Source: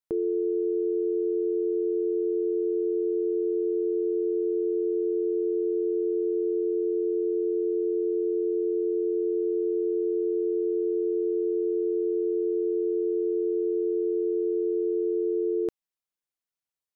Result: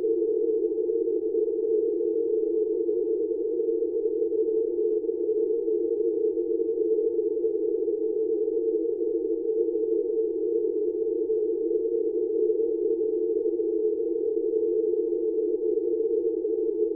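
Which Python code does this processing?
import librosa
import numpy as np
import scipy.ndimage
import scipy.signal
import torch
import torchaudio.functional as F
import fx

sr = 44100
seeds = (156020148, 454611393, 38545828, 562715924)

y = fx.tracing_dist(x, sr, depth_ms=0.04)
y = fx.echo_diffused(y, sr, ms=1223, feedback_pct=54, wet_db=-8.0)
y = fx.paulstretch(y, sr, seeds[0], factor=32.0, window_s=0.05, from_s=4.1)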